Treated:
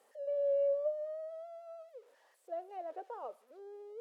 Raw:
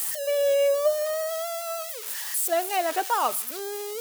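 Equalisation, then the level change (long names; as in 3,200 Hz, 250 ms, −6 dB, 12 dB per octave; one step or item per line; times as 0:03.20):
resonant band-pass 520 Hz, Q 4.4
−7.5 dB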